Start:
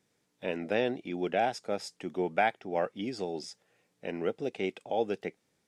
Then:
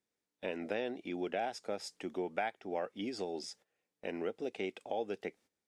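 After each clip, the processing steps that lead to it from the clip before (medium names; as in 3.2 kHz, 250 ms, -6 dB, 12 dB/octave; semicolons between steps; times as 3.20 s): gate -57 dBFS, range -13 dB; peaking EQ 140 Hz -13.5 dB 0.47 oct; compression 2.5:1, threshold -34 dBFS, peak gain reduction 8.5 dB; trim -1 dB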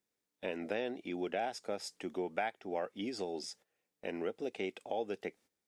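treble shelf 9.5 kHz +4.5 dB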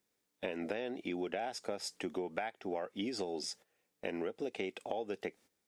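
compression, threshold -39 dBFS, peak gain reduction 9 dB; trim +5 dB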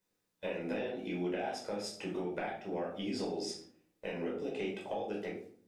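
reverberation RT60 0.55 s, pre-delay 10 ms, DRR -4 dB; trim -6.5 dB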